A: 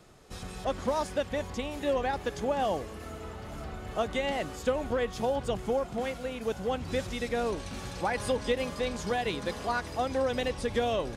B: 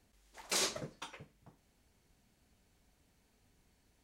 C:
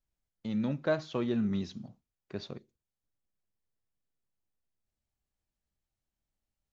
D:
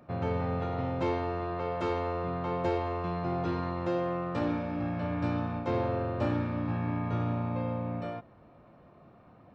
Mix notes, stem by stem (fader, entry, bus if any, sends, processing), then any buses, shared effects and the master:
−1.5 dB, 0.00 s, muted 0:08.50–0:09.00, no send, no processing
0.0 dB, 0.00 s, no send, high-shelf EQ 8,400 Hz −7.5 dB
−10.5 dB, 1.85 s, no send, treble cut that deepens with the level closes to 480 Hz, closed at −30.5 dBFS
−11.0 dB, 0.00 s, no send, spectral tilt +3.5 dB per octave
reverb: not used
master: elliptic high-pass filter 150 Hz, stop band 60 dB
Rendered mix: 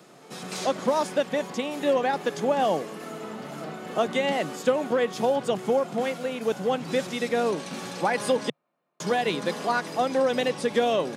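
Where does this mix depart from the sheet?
stem A −1.5 dB → +6.0 dB
stem C: entry 1.85 s → 2.75 s
stem D −11.0 dB → −17.5 dB

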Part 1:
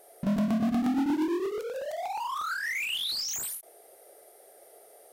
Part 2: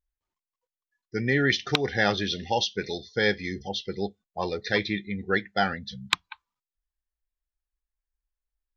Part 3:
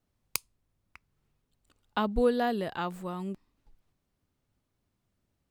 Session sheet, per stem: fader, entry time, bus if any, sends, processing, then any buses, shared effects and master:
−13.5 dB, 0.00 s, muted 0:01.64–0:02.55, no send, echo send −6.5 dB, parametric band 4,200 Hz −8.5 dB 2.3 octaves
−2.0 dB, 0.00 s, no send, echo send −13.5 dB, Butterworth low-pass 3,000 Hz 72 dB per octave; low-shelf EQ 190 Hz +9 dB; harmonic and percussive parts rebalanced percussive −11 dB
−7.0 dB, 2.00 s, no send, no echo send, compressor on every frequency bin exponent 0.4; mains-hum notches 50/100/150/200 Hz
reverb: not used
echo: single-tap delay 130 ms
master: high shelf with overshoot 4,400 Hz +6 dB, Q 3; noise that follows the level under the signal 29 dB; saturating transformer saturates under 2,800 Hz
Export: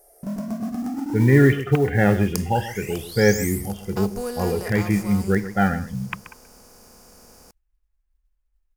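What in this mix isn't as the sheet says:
stem 1 −13.5 dB → −2.0 dB
stem 2 −2.0 dB → +8.0 dB
master: missing saturating transformer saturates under 2,800 Hz

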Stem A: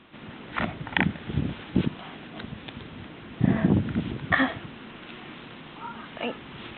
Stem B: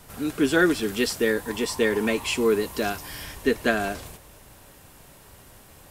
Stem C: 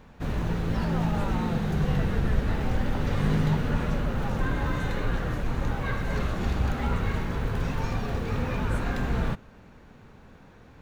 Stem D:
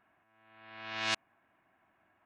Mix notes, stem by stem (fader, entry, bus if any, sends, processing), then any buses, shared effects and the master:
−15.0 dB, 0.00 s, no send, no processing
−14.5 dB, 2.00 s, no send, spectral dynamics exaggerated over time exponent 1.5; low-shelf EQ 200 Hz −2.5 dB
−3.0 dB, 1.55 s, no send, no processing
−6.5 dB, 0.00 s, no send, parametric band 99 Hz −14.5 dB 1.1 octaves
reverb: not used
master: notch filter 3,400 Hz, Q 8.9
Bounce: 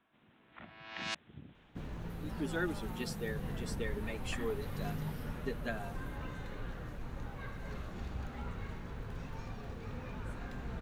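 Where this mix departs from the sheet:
stem A −15.0 dB → −24.5 dB
stem C −3.0 dB → −15.0 dB
master: missing notch filter 3,400 Hz, Q 8.9

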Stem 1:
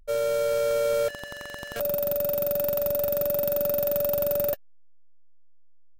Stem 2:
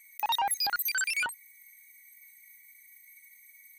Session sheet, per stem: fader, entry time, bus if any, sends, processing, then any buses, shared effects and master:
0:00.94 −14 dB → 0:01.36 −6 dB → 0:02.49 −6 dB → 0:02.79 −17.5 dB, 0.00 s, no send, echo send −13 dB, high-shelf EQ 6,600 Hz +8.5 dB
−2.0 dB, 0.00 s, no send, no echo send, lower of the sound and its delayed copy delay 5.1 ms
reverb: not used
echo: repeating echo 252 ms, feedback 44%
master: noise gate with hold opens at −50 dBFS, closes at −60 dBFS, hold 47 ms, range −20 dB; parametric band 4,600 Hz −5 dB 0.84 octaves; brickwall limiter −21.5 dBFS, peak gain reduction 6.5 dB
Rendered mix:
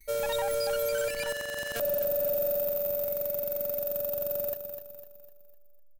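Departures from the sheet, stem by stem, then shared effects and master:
stem 1 −14.0 dB → −3.0 dB
master: missing parametric band 4,600 Hz −5 dB 0.84 octaves

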